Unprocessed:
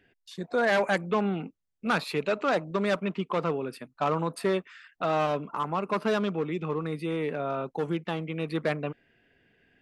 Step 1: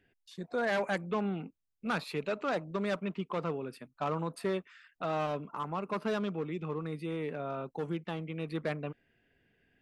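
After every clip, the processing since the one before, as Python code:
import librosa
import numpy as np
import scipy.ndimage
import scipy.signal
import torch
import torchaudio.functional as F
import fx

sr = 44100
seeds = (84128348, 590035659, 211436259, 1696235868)

y = fx.low_shelf(x, sr, hz=150.0, db=5.5)
y = F.gain(torch.from_numpy(y), -7.0).numpy()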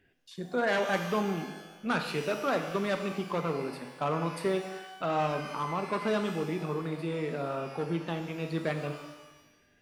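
y = fx.rev_shimmer(x, sr, seeds[0], rt60_s=1.0, semitones=12, shimmer_db=-8, drr_db=5.5)
y = F.gain(torch.from_numpy(y), 2.5).numpy()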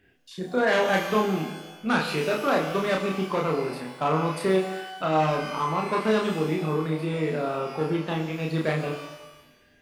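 y = fx.doubler(x, sr, ms=32.0, db=-2)
y = F.gain(torch.from_numpy(y), 4.0).numpy()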